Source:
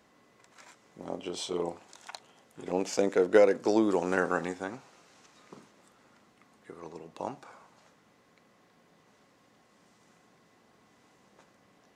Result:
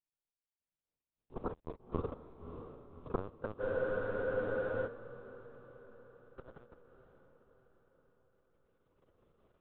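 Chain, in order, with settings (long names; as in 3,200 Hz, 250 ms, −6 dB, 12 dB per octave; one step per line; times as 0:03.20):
gliding playback speed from 66% → 183%
camcorder AGC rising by 11 dB per second
Butterworth low-pass 560 Hz 72 dB per octave
noise gate with hold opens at −49 dBFS
in parallel at −1.5 dB: downward compressor 12 to 1, threshold −41 dBFS, peak gain reduction 23.5 dB
on the sum: background noise pink −47 dBFS
power curve on the samples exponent 3
linear-prediction vocoder at 8 kHz pitch kept
feedback delay with all-pass diffusion 592 ms, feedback 52%, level −9 dB
frozen spectrum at 0:03.63, 1.24 s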